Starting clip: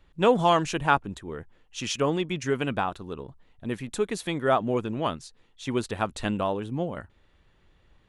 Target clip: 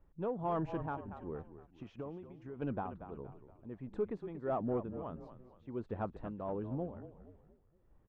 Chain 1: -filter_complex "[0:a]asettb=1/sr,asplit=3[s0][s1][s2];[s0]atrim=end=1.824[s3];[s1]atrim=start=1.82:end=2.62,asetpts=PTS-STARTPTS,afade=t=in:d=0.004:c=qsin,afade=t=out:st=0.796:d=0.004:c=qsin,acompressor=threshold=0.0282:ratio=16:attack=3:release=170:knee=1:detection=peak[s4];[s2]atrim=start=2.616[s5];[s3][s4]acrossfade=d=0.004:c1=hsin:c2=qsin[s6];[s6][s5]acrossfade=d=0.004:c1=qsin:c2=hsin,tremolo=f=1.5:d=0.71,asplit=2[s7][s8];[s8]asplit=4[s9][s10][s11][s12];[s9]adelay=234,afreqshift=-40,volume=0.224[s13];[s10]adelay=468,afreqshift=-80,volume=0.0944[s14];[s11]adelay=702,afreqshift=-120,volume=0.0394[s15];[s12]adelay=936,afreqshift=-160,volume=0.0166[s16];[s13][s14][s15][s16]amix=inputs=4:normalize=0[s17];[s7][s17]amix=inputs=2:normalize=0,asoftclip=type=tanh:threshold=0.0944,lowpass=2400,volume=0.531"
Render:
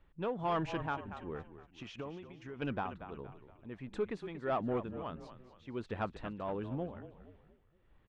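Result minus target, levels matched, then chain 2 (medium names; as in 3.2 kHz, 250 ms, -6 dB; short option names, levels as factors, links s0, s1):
2 kHz band +8.5 dB
-filter_complex "[0:a]asettb=1/sr,asplit=3[s0][s1][s2];[s0]atrim=end=1.824[s3];[s1]atrim=start=1.82:end=2.62,asetpts=PTS-STARTPTS,afade=t=in:d=0.004:c=qsin,afade=t=out:st=0.796:d=0.004:c=qsin,acompressor=threshold=0.0282:ratio=16:attack=3:release=170:knee=1:detection=peak[s4];[s2]atrim=start=2.616[s5];[s3][s4]acrossfade=d=0.004:c1=hsin:c2=qsin[s6];[s6][s5]acrossfade=d=0.004:c1=qsin:c2=hsin,tremolo=f=1.5:d=0.71,asplit=2[s7][s8];[s8]asplit=4[s9][s10][s11][s12];[s9]adelay=234,afreqshift=-40,volume=0.224[s13];[s10]adelay=468,afreqshift=-80,volume=0.0944[s14];[s11]adelay=702,afreqshift=-120,volume=0.0394[s15];[s12]adelay=936,afreqshift=-160,volume=0.0166[s16];[s13][s14][s15][s16]amix=inputs=4:normalize=0[s17];[s7][s17]amix=inputs=2:normalize=0,asoftclip=type=tanh:threshold=0.0944,lowpass=930,volume=0.531"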